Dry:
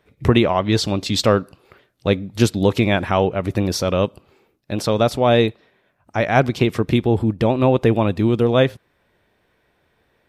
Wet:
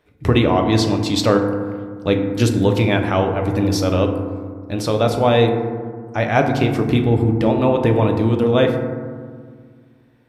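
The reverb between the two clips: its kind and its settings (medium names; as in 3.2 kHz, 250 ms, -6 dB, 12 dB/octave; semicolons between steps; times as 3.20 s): FDN reverb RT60 1.8 s, low-frequency decay 1.4×, high-frequency decay 0.3×, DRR 3 dB; trim -1.5 dB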